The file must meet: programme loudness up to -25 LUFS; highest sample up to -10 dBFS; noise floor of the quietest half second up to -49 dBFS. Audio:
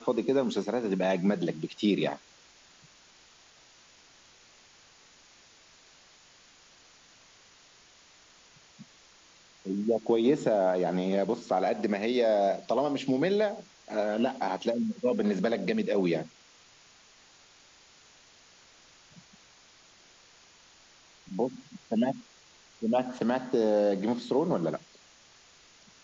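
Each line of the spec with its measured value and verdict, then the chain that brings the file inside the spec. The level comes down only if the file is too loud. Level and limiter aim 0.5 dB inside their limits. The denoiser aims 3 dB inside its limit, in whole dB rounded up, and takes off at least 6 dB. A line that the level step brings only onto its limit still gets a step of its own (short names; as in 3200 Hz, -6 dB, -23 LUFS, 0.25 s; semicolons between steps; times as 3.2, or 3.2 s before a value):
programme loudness -29.0 LUFS: OK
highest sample -13.5 dBFS: OK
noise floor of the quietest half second -58 dBFS: OK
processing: none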